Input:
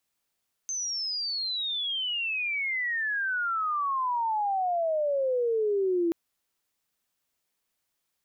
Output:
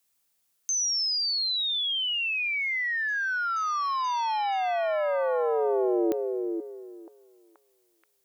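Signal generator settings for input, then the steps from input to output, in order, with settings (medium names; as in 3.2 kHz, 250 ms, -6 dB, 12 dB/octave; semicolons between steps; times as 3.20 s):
sweep logarithmic 6.3 kHz -> 330 Hz -29 dBFS -> -22.5 dBFS 5.43 s
treble shelf 5.4 kHz +9.5 dB; on a send: repeats whose band climbs or falls 479 ms, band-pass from 400 Hz, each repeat 0.7 oct, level -5 dB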